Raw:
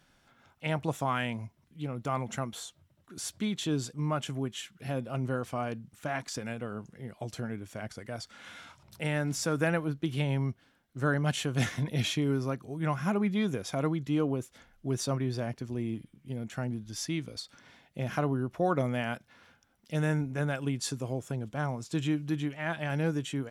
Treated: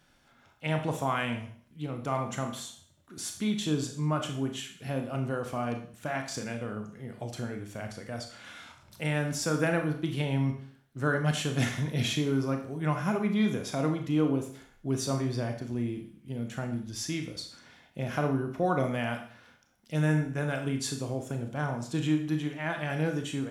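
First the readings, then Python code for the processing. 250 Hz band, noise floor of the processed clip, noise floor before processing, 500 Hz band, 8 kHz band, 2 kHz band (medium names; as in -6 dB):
+2.0 dB, -63 dBFS, -67 dBFS, +1.5 dB, +1.5 dB, +1.5 dB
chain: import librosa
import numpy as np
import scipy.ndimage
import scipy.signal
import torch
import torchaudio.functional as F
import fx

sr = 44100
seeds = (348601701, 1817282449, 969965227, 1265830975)

y = fx.rev_schroeder(x, sr, rt60_s=0.52, comb_ms=26, drr_db=4.5)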